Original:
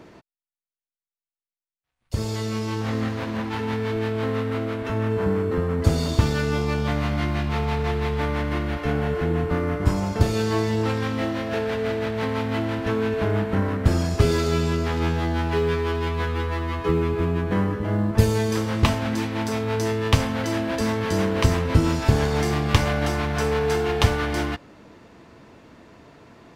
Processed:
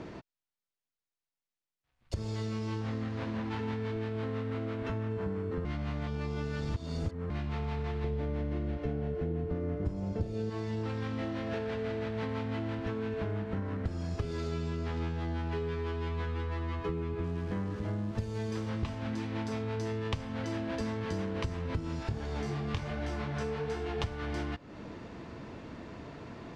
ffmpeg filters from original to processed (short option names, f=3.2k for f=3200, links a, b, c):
-filter_complex "[0:a]asettb=1/sr,asplit=3[a][b][c];[a]atrim=end=8.044[d];[b]atrim=start=8.04:end=10.5,asetpts=PTS-STARTPTS,afade=t=in:d=0.004:c=qsin,afade=t=out:st=2.456:d=0.004:c=qsin,lowshelf=f=750:t=q:w=1.5:g=7[e];[c]atrim=start=10.496[f];[d][e]acrossfade=d=0.004:c1=hsin:c2=qsin[g];[g][f]acrossfade=d=0.004:c1=qsin:c2=hsin,asettb=1/sr,asplit=3[h][i][j];[h]atrim=end=17.244[k];[i]atrim=start=17.24:end=18.69,asetpts=PTS-STARTPTS,afade=t=in:d=0.004:c=qsin,afade=t=out:st=1.446:d=0.004:c=qsin,aeval=exprs='val(0)*gte(abs(val(0)),0.0188)':c=same[l];[j]atrim=start=18.686[m];[k][l]acrossfade=d=0.004:c1=hsin:c2=qsin[n];[n][m]acrossfade=d=0.004:c1=qsin:c2=hsin,asplit=3[o][p][q];[o]afade=t=out:st=22.02:d=0.02[r];[p]flanger=delay=16.5:depth=6.4:speed=1.3,afade=t=in:st=22.02:d=0.02,afade=t=out:st=23.97:d=0.02[s];[q]afade=t=in:st=23.97:d=0.02[t];[r][s][t]amix=inputs=3:normalize=0,asplit=3[u][v][w];[u]atrim=end=5.652[x];[v]atrim=start=5.648:end=7.302,asetpts=PTS-STARTPTS,areverse[y];[w]atrim=start=7.298[z];[x][y]acrossfade=d=0.004:c1=hsin:c2=hsin[aa];[aa][z]acrossfade=d=0.004:c1=hsin:c2=hsin,lowpass=6.4k,lowshelf=f=290:g=5,acompressor=threshold=-34dB:ratio=6,volume=1dB"